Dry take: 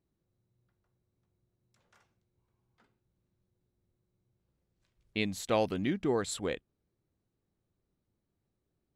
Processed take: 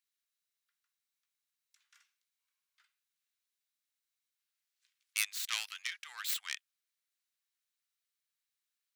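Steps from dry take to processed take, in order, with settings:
stylus tracing distortion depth 0.21 ms
Bessel high-pass filter 2,300 Hz, order 6
level +6 dB

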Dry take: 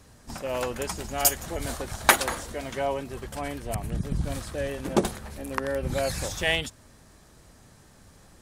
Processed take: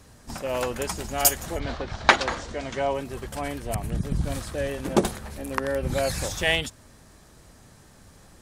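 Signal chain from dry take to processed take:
0:01.58–0:02.93: low-pass filter 4,100 Hz → 8,400 Hz 24 dB per octave
level +2 dB

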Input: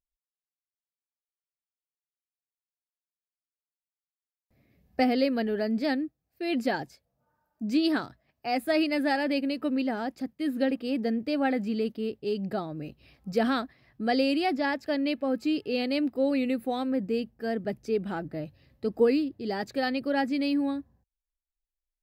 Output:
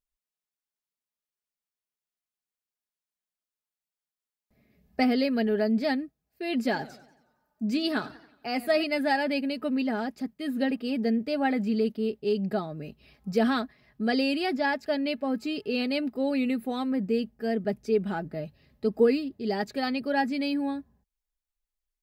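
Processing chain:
comb filter 4.8 ms, depth 48%
0:06.55–0:08.84: feedback echo with a swinging delay time 91 ms, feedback 50%, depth 171 cents, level −17 dB

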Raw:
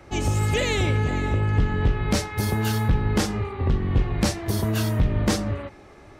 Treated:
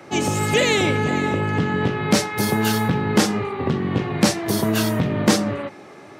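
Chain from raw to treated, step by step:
high-pass filter 140 Hz 24 dB per octave
level +6.5 dB

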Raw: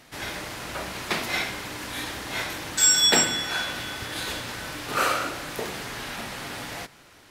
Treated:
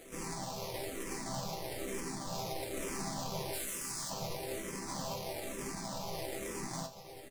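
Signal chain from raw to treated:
0:04.79–0:06.27: lower of the sound and its delayed copy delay 1.2 ms
high-pass filter 140 Hz 6 dB per octave
downward compressor 2.5 to 1, threshold −40 dBFS, peak gain reduction 16 dB
sample-rate reduction 1,500 Hz, jitter 20%
0:03.53–0:04.10: tilt shelving filter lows −8 dB
wrap-around overflow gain 35 dB
flat-topped bell 7,500 Hz +8.5 dB
resonators tuned to a chord C3 major, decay 0.23 s
single-tap delay 638 ms −16.5 dB
frequency shifter mixed with the dry sound −1.1 Hz
level +16.5 dB

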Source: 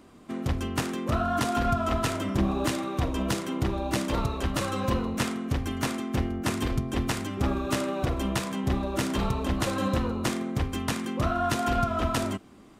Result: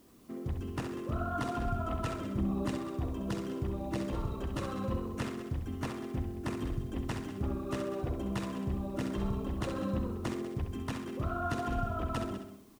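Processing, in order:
spectral envelope exaggerated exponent 1.5
single-tap delay 193 ms −13 dB
background noise white −60 dBFS
on a send: flutter between parallel walls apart 11.3 metres, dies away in 0.54 s
on the sum: level −8 dB

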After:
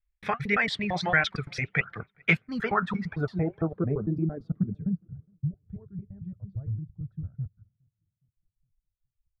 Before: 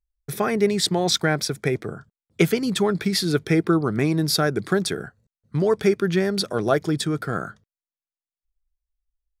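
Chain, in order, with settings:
slices reordered back to front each 113 ms, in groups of 2
parametric band 340 Hz −13 dB 1.6 octaves
notch filter 380 Hz, Q 12
in parallel at −0.5 dB: brickwall limiter −19 dBFS, peak gain reduction 11 dB
on the sum: low-pass filter sweep 2,200 Hz → 100 Hz, 0:02.35–0:05.43
flanger 1.6 Hz, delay 2.9 ms, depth 9.3 ms, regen −67%
on a send: delay with a low-pass on its return 414 ms, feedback 31%, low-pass 3,000 Hz, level −23 dB
on the sum: reverb reduction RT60 1.3 s

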